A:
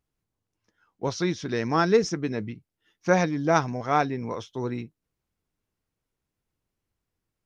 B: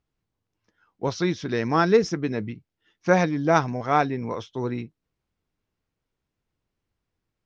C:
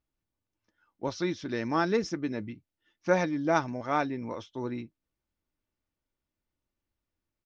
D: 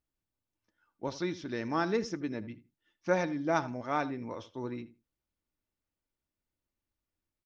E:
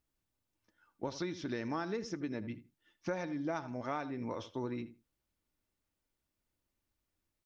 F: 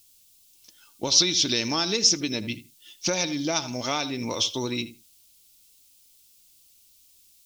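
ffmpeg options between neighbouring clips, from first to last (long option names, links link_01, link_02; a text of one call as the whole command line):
ffmpeg -i in.wav -af "lowpass=5400,volume=2dB" out.wav
ffmpeg -i in.wav -af "aecho=1:1:3.4:0.37,volume=-6.5dB" out.wav
ffmpeg -i in.wav -filter_complex "[0:a]asplit=2[link_01][link_02];[link_02]adelay=80,lowpass=frequency=2400:poles=1,volume=-15dB,asplit=2[link_03][link_04];[link_04]adelay=80,lowpass=frequency=2400:poles=1,volume=0.18[link_05];[link_01][link_03][link_05]amix=inputs=3:normalize=0,volume=-3.5dB" out.wav
ffmpeg -i in.wav -af "acompressor=threshold=-38dB:ratio=6,volume=3.5dB" out.wav
ffmpeg -i in.wav -af "aexciter=amount=10.7:drive=4.8:freq=2600,volume=8.5dB" out.wav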